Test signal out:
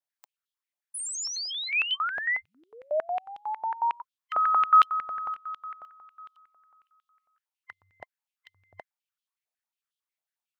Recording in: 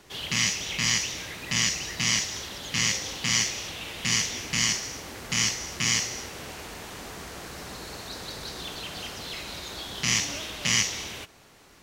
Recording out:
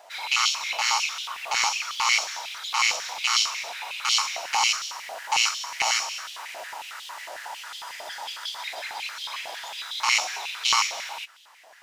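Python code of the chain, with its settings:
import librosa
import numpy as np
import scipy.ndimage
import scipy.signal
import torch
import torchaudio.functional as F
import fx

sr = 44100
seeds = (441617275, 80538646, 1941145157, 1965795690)

y = fx.band_invert(x, sr, width_hz=1000)
y = fx.filter_held_highpass(y, sr, hz=11.0, low_hz=670.0, high_hz=3300.0)
y = y * 10.0 ** (-1.5 / 20.0)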